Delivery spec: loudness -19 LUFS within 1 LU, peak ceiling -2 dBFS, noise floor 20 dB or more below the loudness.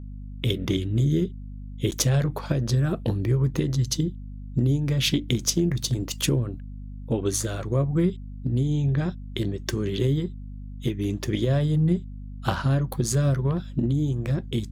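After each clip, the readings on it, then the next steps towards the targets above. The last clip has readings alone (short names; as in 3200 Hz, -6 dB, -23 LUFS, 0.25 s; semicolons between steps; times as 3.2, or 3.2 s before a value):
dropouts 1; longest dropout 9.3 ms; hum 50 Hz; harmonics up to 250 Hz; hum level -35 dBFS; loudness -25.5 LUFS; peak -6.5 dBFS; loudness target -19.0 LUFS
-> interpolate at 1.91, 9.3 ms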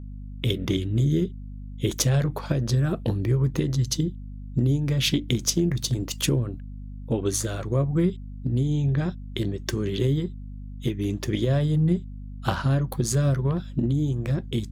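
dropouts 0; hum 50 Hz; harmonics up to 250 Hz; hum level -35 dBFS
-> de-hum 50 Hz, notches 5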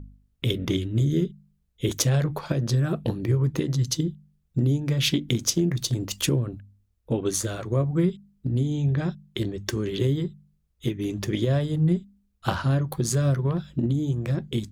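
hum none; loudness -26.0 LUFS; peak -6.5 dBFS; loudness target -19.0 LUFS
-> gain +7 dB; limiter -2 dBFS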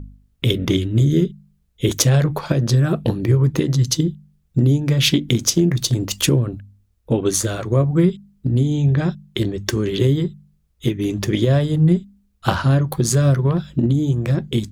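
loudness -19.0 LUFS; peak -2.0 dBFS; noise floor -63 dBFS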